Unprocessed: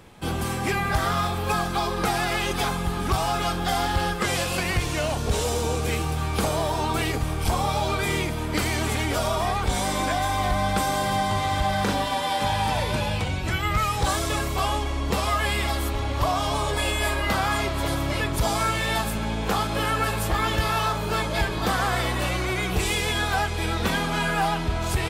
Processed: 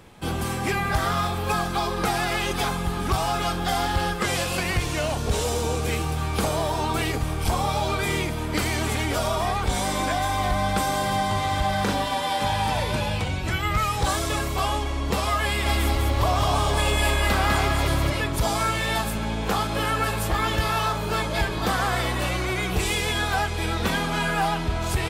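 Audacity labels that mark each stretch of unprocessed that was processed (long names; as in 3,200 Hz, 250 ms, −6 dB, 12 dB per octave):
15.460000	18.100000	feedback echo at a low word length 200 ms, feedback 35%, word length 9 bits, level −3 dB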